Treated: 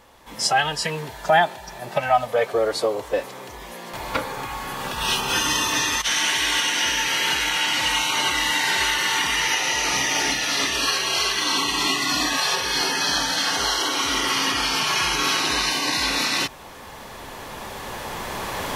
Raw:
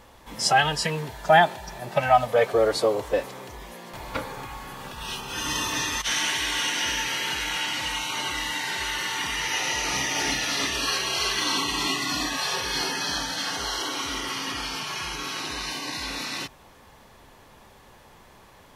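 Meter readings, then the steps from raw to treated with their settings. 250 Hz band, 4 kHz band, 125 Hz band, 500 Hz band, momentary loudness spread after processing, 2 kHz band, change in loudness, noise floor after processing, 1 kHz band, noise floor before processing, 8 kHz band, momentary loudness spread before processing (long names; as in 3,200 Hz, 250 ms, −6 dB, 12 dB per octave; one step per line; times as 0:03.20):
+3.0 dB, +6.0 dB, 0.0 dB, +0.5 dB, 14 LU, +5.0 dB, +4.0 dB, −39 dBFS, +2.5 dB, −52 dBFS, +5.5 dB, 13 LU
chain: camcorder AGC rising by 6.7 dB per second
low-shelf EQ 210 Hz −6 dB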